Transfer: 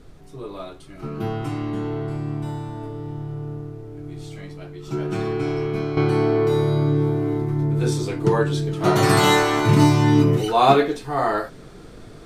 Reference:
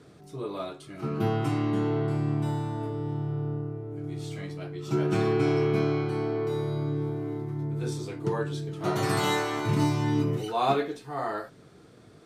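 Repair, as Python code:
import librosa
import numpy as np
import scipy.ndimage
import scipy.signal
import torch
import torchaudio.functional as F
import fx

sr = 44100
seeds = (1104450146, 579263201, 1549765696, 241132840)

y = fx.noise_reduce(x, sr, print_start_s=11.5, print_end_s=12.0, reduce_db=8.0)
y = fx.gain(y, sr, db=fx.steps((0.0, 0.0), (5.97, -10.0)))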